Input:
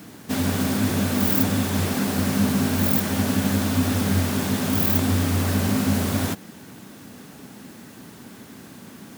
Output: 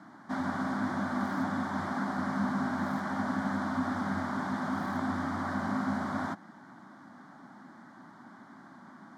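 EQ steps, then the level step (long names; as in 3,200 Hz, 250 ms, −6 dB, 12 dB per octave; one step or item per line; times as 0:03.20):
band-pass filter 300–2,100 Hz
phaser with its sweep stopped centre 1,100 Hz, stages 4
0.0 dB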